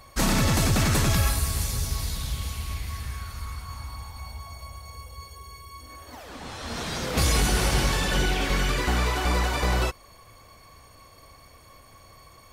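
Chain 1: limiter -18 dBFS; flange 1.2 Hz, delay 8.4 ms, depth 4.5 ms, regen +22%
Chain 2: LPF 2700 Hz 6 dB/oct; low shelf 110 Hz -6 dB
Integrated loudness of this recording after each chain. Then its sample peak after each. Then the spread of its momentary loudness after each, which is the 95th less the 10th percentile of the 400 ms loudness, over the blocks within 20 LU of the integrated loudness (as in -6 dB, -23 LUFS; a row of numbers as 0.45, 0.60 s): -33.0, -28.5 LUFS; -19.0, -14.0 dBFS; 17, 20 LU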